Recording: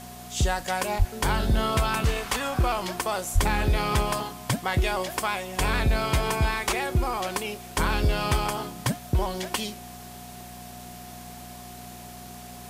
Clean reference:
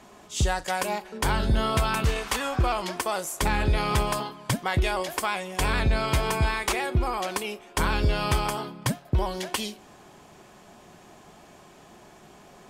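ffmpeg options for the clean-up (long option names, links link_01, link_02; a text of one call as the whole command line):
ffmpeg -i in.wav -filter_complex "[0:a]bandreject=frequency=60.9:width_type=h:width=4,bandreject=frequency=121.8:width_type=h:width=4,bandreject=frequency=182.7:width_type=h:width=4,bandreject=frequency=243.6:width_type=h:width=4,bandreject=frequency=720:width=30,asplit=3[link_01][link_02][link_03];[link_01]afade=type=out:start_time=0.98:duration=0.02[link_04];[link_02]highpass=frequency=140:width=0.5412,highpass=frequency=140:width=1.3066,afade=type=in:start_time=0.98:duration=0.02,afade=type=out:start_time=1.1:duration=0.02[link_05];[link_03]afade=type=in:start_time=1.1:duration=0.02[link_06];[link_04][link_05][link_06]amix=inputs=3:normalize=0,asplit=3[link_07][link_08][link_09];[link_07]afade=type=out:start_time=3.34:duration=0.02[link_10];[link_08]highpass=frequency=140:width=0.5412,highpass=frequency=140:width=1.3066,afade=type=in:start_time=3.34:duration=0.02,afade=type=out:start_time=3.46:duration=0.02[link_11];[link_09]afade=type=in:start_time=3.46:duration=0.02[link_12];[link_10][link_11][link_12]amix=inputs=3:normalize=0,afwtdn=0.005" out.wav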